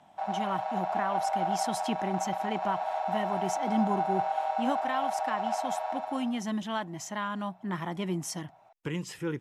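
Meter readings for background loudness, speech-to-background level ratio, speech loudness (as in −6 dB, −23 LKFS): −32.0 LKFS, −2.5 dB, −34.5 LKFS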